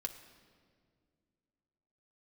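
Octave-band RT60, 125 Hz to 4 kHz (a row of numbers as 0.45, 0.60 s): 2.8, 2.9, 2.4, 1.7, 1.5, 1.4 s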